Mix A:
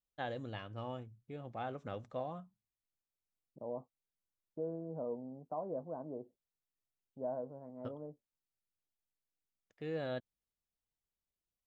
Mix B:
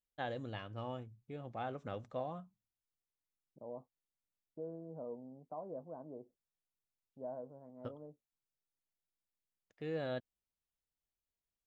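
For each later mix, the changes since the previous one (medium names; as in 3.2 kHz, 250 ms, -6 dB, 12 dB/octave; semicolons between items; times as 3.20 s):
second voice -5.0 dB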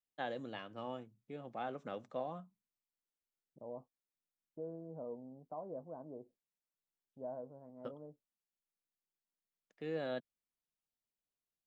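first voice: add high-pass 160 Hz 24 dB/octave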